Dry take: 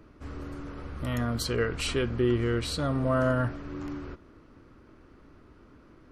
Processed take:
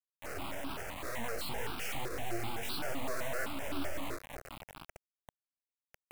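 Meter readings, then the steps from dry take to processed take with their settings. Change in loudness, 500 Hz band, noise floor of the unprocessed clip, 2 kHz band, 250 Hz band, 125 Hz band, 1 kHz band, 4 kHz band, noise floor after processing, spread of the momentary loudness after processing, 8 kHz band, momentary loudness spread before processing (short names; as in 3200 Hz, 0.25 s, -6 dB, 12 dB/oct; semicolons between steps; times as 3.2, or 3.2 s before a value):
-10.0 dB, -11.0 dB, -56 dBFS, -4.0 dB, -13.5 dB, -17.0 dB, -4.5 dB, -6.5 dB, under -85 dBFS, 11 LU, -3.5 dB, 15 LU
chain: low-pass opened by the level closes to 2400 Hz, open at -21.5 dBFS; Chebyshev band-pass 280–7600 Hz, order 3; high shelf 3300 Hz -6.5 dB; compressor 1.5:1, threshold -36 dBFS, peak gain reduction 5 dB; limiter -32 dBFS, peak gain reduction 10 dB; half-wave rectifier; on a send: diffused feedback echo 0.493 s, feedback 49%, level -14 dB; on the sum: vibrato 8.9 Hz 83 cents; chorus 1.7 Hz, delay 17.5 ms, depth 4.3 ms; requantised 8-bit, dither none; step phaser 7.8 Hz 840–1900 Hz; gain +11 dB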